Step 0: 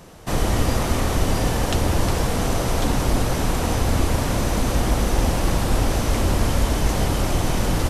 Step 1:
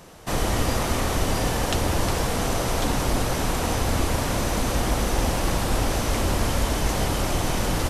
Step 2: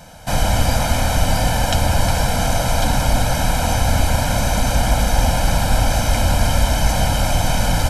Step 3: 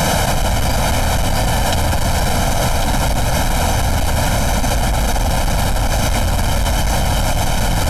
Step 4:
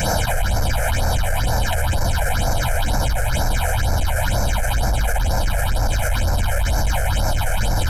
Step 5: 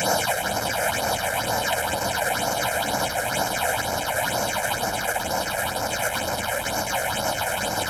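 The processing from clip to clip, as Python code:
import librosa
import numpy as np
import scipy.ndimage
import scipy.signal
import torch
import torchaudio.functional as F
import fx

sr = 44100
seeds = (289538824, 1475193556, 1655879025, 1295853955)

y1 = fx.low_shelf(x, sr, hz=380.0, db=-4.5)
y2 = y1 + 0.99 * np.pad(y1, (int(1.3 * sr / 1000.0), 0))[:len(y1)]
y2 = y2 * 10.0 ** (2.5 / 20.0)
y3 = 10.0 ** (-12.5 / 20.0) * np.tanh(y2 / 10.0 ** (-12.5 / 20.0))
y3 = fx.env_flatten(y3, sr, amount_pct=100)
y4 = fx.phaser_stages(y3, sr, stages=6, low_hz=250.0, high_hz=3000.0, hz=2.1, feedback_pct=25)
y4 = fx.graphic_eq_31(y4, sr, hz=(160, 250, 1600), db=(-8, -9, 6))
y4 = y4 * 10.0 ** (-2.5 / 20.0)
y5 = scipy.signal.sosfilt(scipy.signal.butter(2, 240.0, 'highpass', fs=sr, output='sos'), y4)
y5 = fx.echo_split(y5, sr, split_hz=2600.0, low_ms=377, high_ms=102, feedback_pct=52, wet_db=-8.5)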